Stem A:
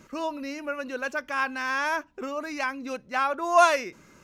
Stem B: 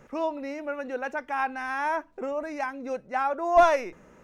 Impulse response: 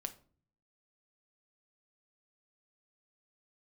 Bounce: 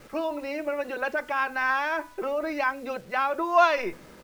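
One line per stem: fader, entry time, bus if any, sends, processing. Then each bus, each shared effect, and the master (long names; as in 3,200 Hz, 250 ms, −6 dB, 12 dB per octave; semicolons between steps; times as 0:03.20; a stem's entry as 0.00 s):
−1.5 dB, 0.00 s, send −23 dB, hum removal 246.5 Hz, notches 10
−4.0 dB, 4.5 ms, polarity flipped, send −5.5 dB, compressor whose output falls as the input rises −31 dBFS, ratio −0.5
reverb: on, RT60 0.45 s, pre-delay 6 ms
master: low-pass filter 4,600 Hz 24 dB per octave; bit reduction 9 bits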